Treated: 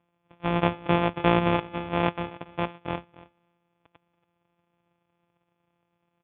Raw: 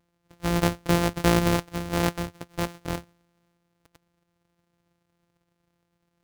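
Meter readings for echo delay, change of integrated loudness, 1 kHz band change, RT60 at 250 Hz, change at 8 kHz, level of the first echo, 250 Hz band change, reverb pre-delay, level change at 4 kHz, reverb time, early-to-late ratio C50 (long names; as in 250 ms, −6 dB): 281 ms, −0.5 dB, +3.0 dB, no reverb audible, below −40 dB, −19.0 dB, −1.5 dB, no reverb audible, −3.0 dB, no reverb audible, no reverb audible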